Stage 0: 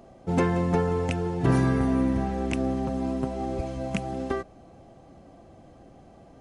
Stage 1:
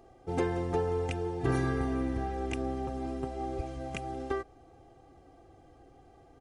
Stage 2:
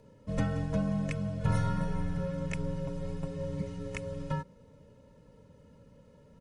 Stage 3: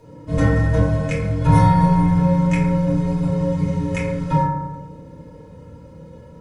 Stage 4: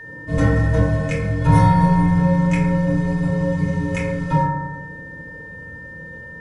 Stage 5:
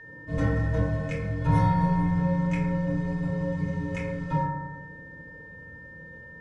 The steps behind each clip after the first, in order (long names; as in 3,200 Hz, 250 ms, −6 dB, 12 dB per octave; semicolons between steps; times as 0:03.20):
comb filter 2.5 ms, depth 71%; level −7.5 dB
frequency shifter −240 Hz
convolution reverb RT60 1.1 s, pre-delay 3 ms, DRR −8 dB; level +5.5 dB
steady tone 1,800 Hz −35 dBFS
high-frequency loss of the air 57 metres; level −8.5 dB